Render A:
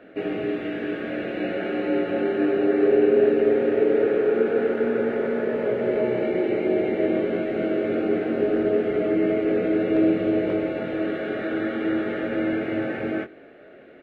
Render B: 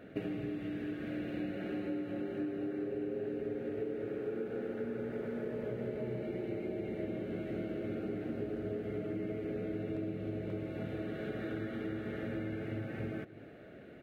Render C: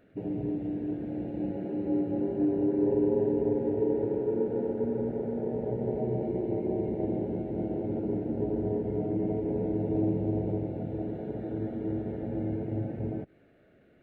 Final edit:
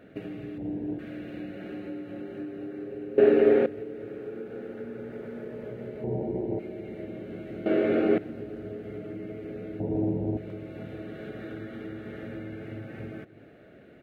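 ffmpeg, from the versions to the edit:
-filter_complex "[2:a]asplit=3[s0][s1][s2];[0:a]asplit=2[s3][s4];[1:a]asplit=6[s5][s6][s7][s8][s9][s10];[s5]atrim=end=0.582[s11];[s0]atrim=start=0.578:end=0.992[s12];[s6]atrim=start=0.988:end=3.182[s13];[s3]atrim=start=3.178:end=3.662[s14];[s7]atrim=start=3.658:end=6.042[s15];[s1]atrim=start=6.038:end=6.592[s16];[s8]atrim=start=6.588:end=7.662[s17];[s4]atrim=start=7.658:end=8.182[s18];[s9]atrim=start=8.178:end=9.802[s19];[s2]atrim=start=9.798:end=10.372[s20];[s10]atrim=start=10.368[s21];[s11][s12]acrossfade=d=0.004:c1=hsin:c2=hsin[s22];[s22][s13]acrossfade=d=0.004:c1=hsin:c2=hsin[s23];[s23][s14]acrossfade=d=0.004:c1=hsin:c2=hsin[s24];[s24][s15]acrossfade=d=0.004:c1=hsin:c2=hsin[s25];[s25][s16]acrossfade=d=0.004:c1=hsin:c2=hsin[s26];[s26][s17]acrossfade=d=0.004:c1=hsin:c2=hsin[s27];[s27][s18]acrossfade=d=0.004:c1=hsin:c2=hsin[s28];[s28][s19]acrossfade=d=0.004:c1=hsin:c2=hsin[s29];[s29][s20]acrossfade=d=0.004:c1=hsin:c2=hsin[s30];[s30][s21]acrossfade=d=0.004:c1=hsin:c2=hsin"

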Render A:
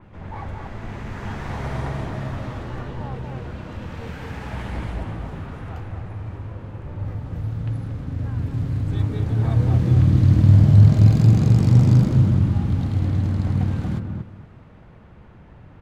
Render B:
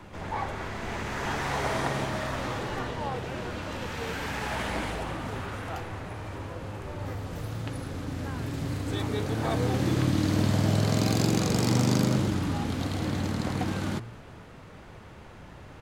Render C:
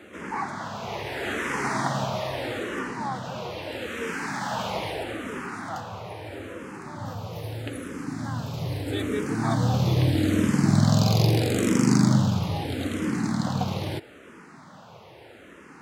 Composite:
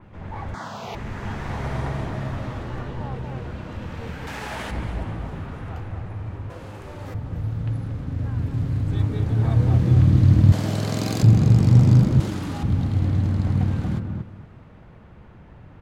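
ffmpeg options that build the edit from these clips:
-filter_complex "[1:a]asplit=4[s0][s1][s2][s3];[0:a]asplit=6[s4][s5][s6][s7][s8][s9];[s4]atrim=end=0.542[s10];[2:a]atrim=start=0.538:end=0.952[s11];[s5]atrim=start=0.948:end=4.272[s12];[s0]atrim=start=4.268:end=4.712[s13];[s6]atrim=start=4.708:end=6.502[s14];[s1]atrim=start=6.498:end=7.142[s15];[s7]atrim=start=7.138:end=10.522[s16];[s2]atrim=start=10.518:end=11.232[s17];[s8]atrim=start=11.228:end=12.202[s18];[s3]atrim=start=12.198:end=12.632[s19];[s9]atrim=start=12.628[s20];[s10][s11]acrossfade=d=0.004:c1=hsin:c2=hsin[s21];[s21][s12]acrossfade=d=0.004:c1=hsin:c2=hsin[s22];[s22][s13]acrossfade=d=0.004:c1=hsin:c2=hsin[s23];[s23][s14]acrossfade=d=0.004:c1=hsin:c2=hsin[s24];[s24][s15]acrossfade=d=0.004:c1=hsin:c2=hsin[s25];[s25][s16]acrossfade=d=0.004:c1=hsin:c2=hsin[s26];[s26][s17]acrossfade=d=0.004:c1=hsin:c2=hsin[s27];[s27][s18]acrossfade=d=0.004:c1=hsin:c2=hsin[s28];[s28][s19]acrossfade=d=0.004:c1=hsin:c2=hsin[s29];[s29][s20]acrossfade=d=0.004:c1=hsin:c2=hsin"

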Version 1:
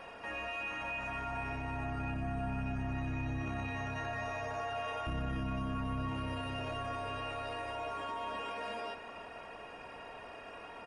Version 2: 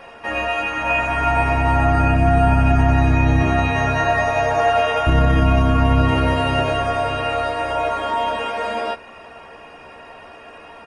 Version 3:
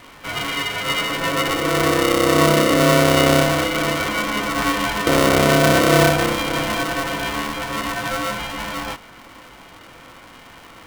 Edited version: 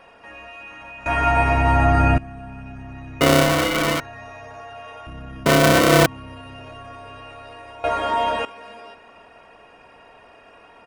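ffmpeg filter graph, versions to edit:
-filter_complex "[1:a]asplit=2[s0][s1];[2:a]asplit=2[s2][s3];[0:a]asplit=5[s4][s5][s6][s7][s8];[s4]atrim=end=1.062[s9];[s0]atrim=start=1.058:end=2.182[s10];[s5]atrim=start=2.178:end=3.212[s11];[s2]atrim=start=3.208:end=4.002[s12];[s6]atrim=start=3.998:end=5.462[s13];[s3]atrim=start=5.458:end=6.062[s14];[s7]atrim=start=6.058:end=7.842[s15];[s1]atrim=start=7.838:end=8.452[s16];[s8]atrim=start=8.448[s17];[s9][s10]acrossfade=d=0.004:c1=hsin:c2=hsin[s18];[s18][s11]acrossfade=d=0.004:c1=hsin:c2=hsin[s19];[s19][s12]acrossfade=d=0.004:c1=hsin:c2=hsin[s20];[s20][s13]acrossfade=d=0.004:c1=hsin:c2=hsin[s21];[s21][s14]acrossfade=d=0.004:c1=hsin:c2=hsin[s22];[s22][s15]acrossfade=d=0.004:c1=hsin:c2=hsin[s23];[s23][s16]acrossfade=d=0.004:c1=hsin:c2=hsin[s24];[s24][s17]acrossfade=d=0.004:c1=hsin:c2=hsin"

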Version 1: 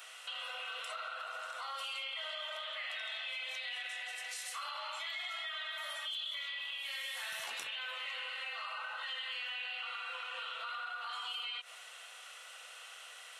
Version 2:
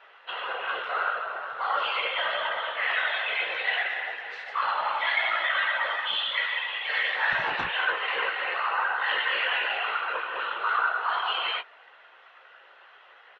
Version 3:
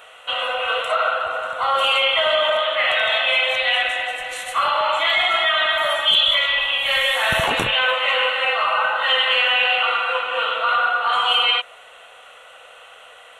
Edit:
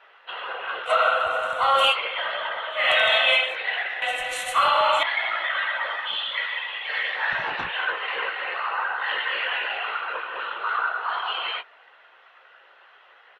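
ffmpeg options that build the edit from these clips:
-filter_complex "[2:a]asplit=3[s0][s1][s2];[1:a]asplit=4[s3][s4][s5][s6];[s3]atrim=end=0.91[s7];[s0]atrim=start=0.85:end=1.96[s8];[s4]atrim=start=1.9:end=2.91[s9];[s1]atrim=start=2.67:end=3.57[s10];[s5]atrim=start=3.33:end=4.022[s11];[s2]atrim=start=4.018:end=5.032[s12];[s6]atrim=start=5.028[s13];[s7][s8]acrossfade=d=0.06:c1=tri:c2=tri[s14];[s14][s9]acrossfade=d=0.06:c1=tri:c2=tri[s15];[s15][s10]acrossfade=d=0.24:c1=tri:c2=tri[s16];[s16][s11]acrossfade=d=0.24:c1=tri:c2=tri[s17];[s17][s12]acrossfade=d=0.004:c1=hsin:c2=hsin[s18];[s18][s13]acrossfade=d=0.004:c1=hsin:c2=hsin"

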